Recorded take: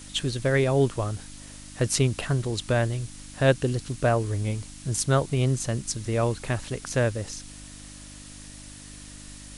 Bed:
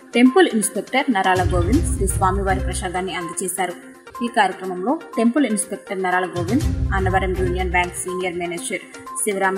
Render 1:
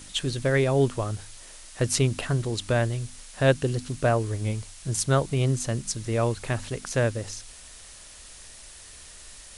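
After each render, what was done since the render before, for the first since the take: de-hum 50 Hz, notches 6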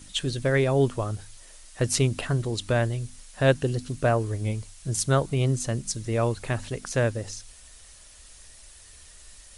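denoiser 6 dB, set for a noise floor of -47 dBFS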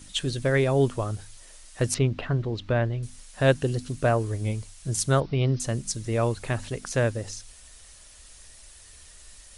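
1.94–3.03 air absorption 240 m; 5.2–5.6 steep low-pass 5500 Hz 96 dB/oct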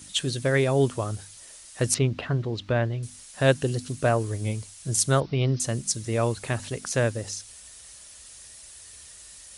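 HPF 69 Hz 12 dB/oct; high shelf 4500 Hz +6 dB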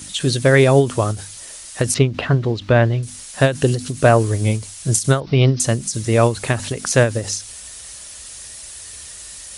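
maximiser +10.5 dB; ending taper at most 170 dB/s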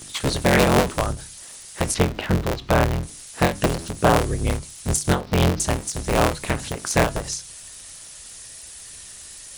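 cycle switcher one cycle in 3, inverted; flange 0.27 Hz, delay 5.8 ms, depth 5.8 ms, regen -81%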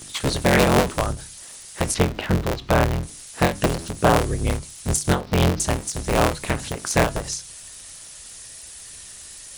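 nothing audible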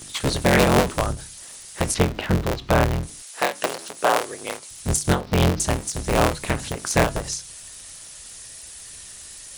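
3.22–4.71 HPF 510 Hz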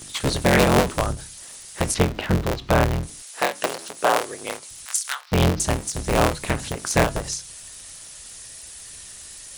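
4.85–5.32 HPF 1200 Hz 24 dB/oct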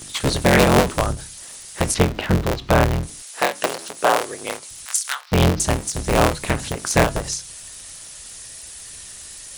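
gain +2.5 dB; limiter -1 dBFS, peak gain reduction 2 dB

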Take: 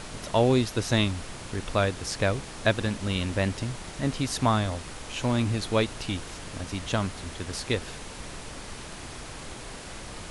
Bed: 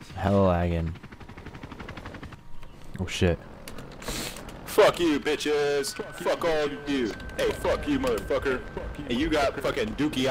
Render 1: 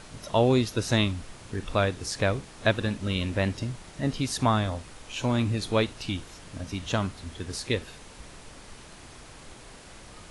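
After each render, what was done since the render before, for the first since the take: noise print and reduce 7 dB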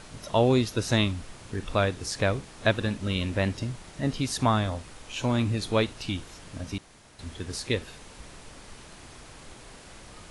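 6.78–7.19 room tone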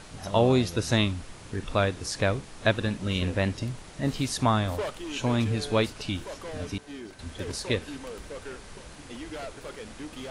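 add bed -14 dB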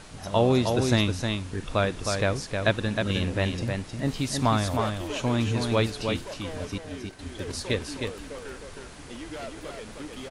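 echo 0.312 s -5 dB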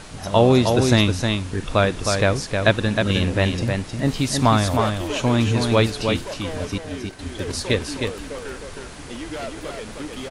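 gain +6.5 dB; limiter -2 dBFS, peak gain reduction 1 dB

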